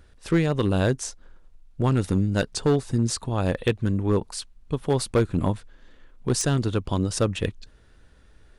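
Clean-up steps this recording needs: clip repair -14 dBFS

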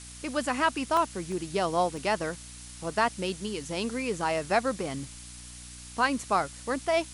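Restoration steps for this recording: de-hum 60.5 Hz, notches 5; interpolate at 0.97/1.32/1.97/2.84 s, 1.6 ms; noise reduction 28 dB, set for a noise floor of -45 dBFS

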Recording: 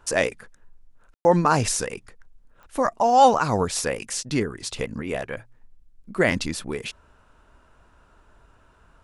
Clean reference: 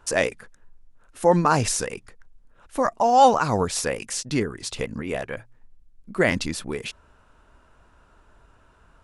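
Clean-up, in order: de-click; room tone fill 1.14–1.25 s

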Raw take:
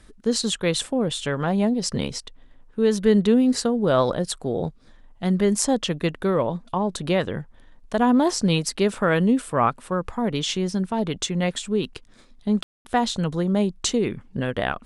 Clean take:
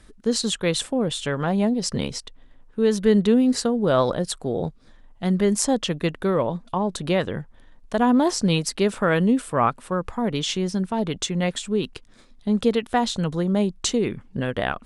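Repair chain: room tone fill 12.63–12.85 s

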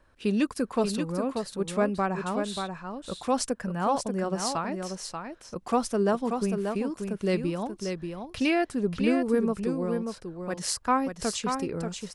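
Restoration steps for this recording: inverse comb 585 ms -6 dB

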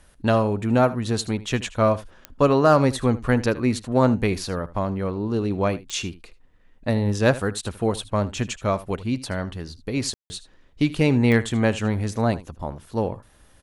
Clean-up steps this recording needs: clip repair -6.5 dBFS; de-click; room tone fill 10.14–10.30 s; inverse comb 77 ms -17.5 dB

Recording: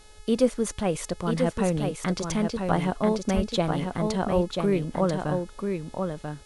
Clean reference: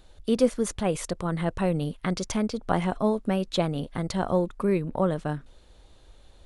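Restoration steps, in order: de-hum 425.9 Hz, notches 26; 3.35–3.47 s: high-pass 140 Hz 24 dB/octave; inverse comb 989 ms -5 dB

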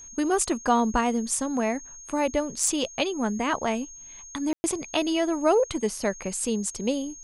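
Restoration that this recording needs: clip repair -10 dBFS; band-stop 6.5 kHz, Q 30; room tone fill 4.53–4.64 s

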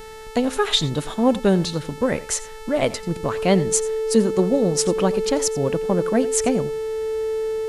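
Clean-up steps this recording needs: de-hum 439.1 Hz, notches 30; band-stop 440 Hz, Q 30; inverse comb 88 ms -18 dB

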